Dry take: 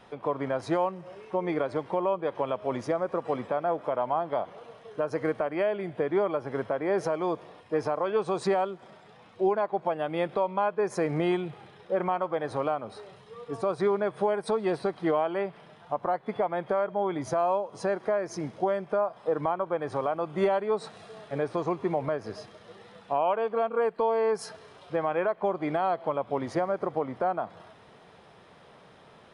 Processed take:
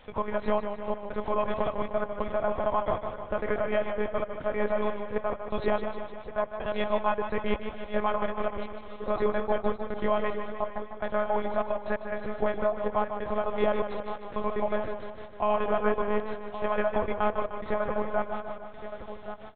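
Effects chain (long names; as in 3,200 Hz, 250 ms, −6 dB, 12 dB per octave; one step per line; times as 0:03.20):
tilt shelving filter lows −3.5 dB, about 1,200 Hz
mains-hum notches 50/100/150/200 Hz
gate pattern "xxxxxxx.x.x.." 118 BPM −60 dB
tempo change 1.5×
on a send: single-tap delay 1,122 ms −11 dB
on the sum: one-pitch LPC vocoder at 8 kHz 210 Hz
feedback echo with a swinging delay time 152 ms, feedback 62%, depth 50 cents, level −9 dB
level +2 dB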